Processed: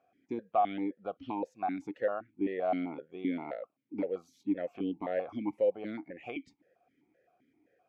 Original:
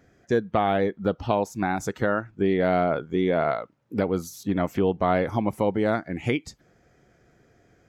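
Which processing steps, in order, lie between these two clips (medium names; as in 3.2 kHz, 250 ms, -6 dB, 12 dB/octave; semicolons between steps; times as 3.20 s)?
stepped vowel filter 7.7 Hz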